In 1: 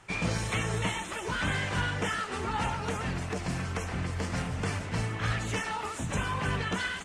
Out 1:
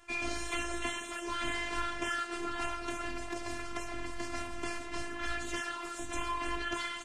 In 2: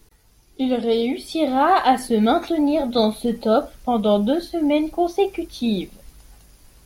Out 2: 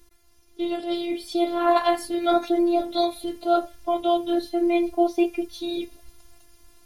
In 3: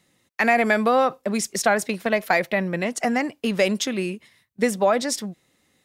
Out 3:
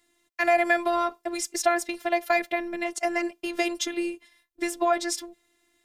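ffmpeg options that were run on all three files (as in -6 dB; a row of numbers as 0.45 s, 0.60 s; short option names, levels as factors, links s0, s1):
-af "afftfilt=real='hypot(re,im)*cos(PI*b)':imag='0':win_size=512:overlap=0.75"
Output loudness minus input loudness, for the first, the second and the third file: -5.0 LU, -3.5 LU, -4.0 LU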